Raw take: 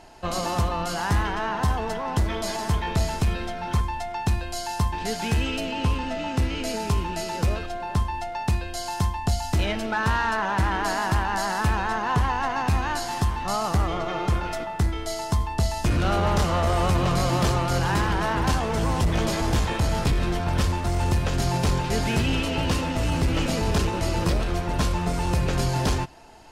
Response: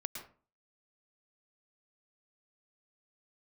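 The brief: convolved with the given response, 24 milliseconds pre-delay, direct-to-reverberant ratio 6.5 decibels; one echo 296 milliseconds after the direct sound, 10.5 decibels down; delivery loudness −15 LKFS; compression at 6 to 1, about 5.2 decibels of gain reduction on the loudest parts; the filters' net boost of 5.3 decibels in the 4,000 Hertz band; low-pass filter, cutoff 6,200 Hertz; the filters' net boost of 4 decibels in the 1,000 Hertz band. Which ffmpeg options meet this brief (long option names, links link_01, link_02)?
-filter_complex "[0:a]lowpass=6200,equalizer=frequency=1000:width_type=o:gain=4.5,equalizer=frequency=4000:width_type=o:gain=7.5,acompressor=threshold=-23dB:ratio=6,aecho=1:1:296:0.299,asplit=2[link_01][link_02];[1:a]atrim=start_sample=2205,adelay=24[link_03];[link_02][link_03]afir=irnorm=-1:irlink=0,volume=-6dB[link_04];[link_01][link_04]amix=inputs=2:normalize=0,volume=10.5dB"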